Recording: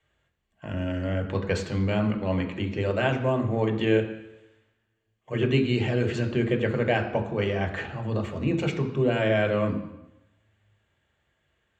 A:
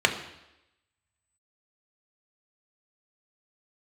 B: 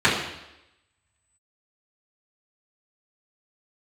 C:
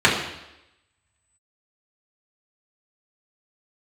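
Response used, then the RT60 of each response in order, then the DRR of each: A; 0.90 s, 0.90 s, 0.90 s; 3.5 dB, -11.0 dB, -6.0 dB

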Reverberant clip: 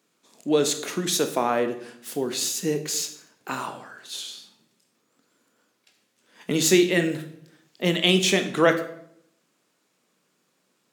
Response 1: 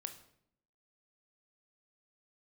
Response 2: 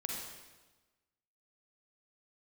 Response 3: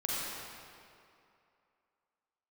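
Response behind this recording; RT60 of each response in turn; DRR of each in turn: 1; 0.70 s, 1.2 s, 2.6 s; 7.0 dB, -1.5 dB, -6.5 dB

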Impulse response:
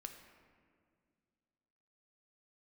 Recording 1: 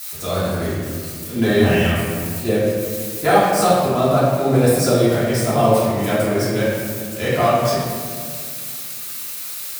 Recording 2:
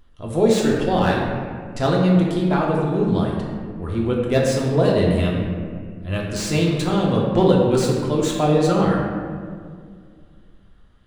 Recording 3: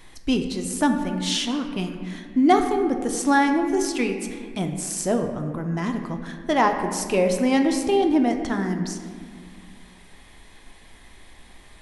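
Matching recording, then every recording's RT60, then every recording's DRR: 3; 2.0 s, 2.0 s, 2.1 s; -11.0 dB, -3.5 dB, 4.5 dB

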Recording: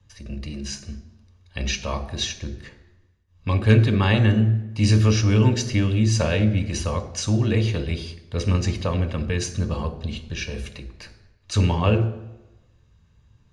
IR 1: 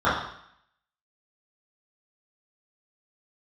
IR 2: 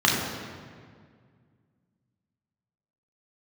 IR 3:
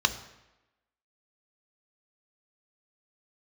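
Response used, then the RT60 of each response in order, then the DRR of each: 3; 0.70 s, 1.9 s, 1.0 s; -12.5 dB, -3.5 dB, 9.0 dB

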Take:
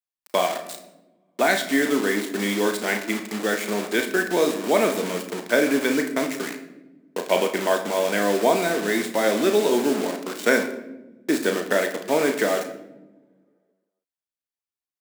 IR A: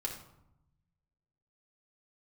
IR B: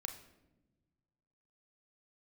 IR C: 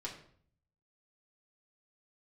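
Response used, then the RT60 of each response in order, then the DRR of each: B; 0.80 s, no single decay rate, 0.55 s; -1.5 dB, 5.0 dB, -3.5 dB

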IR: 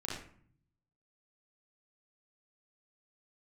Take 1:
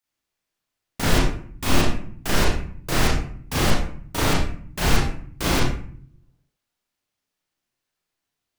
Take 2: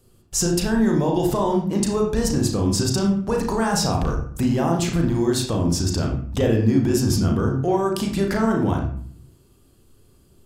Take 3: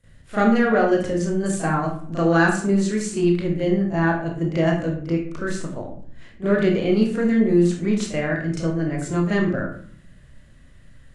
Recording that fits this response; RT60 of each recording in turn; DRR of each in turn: 1; 0.55 s, 0.55 s, 0.55 s; -6.5 dB, 0.5 dB, -15.5 dB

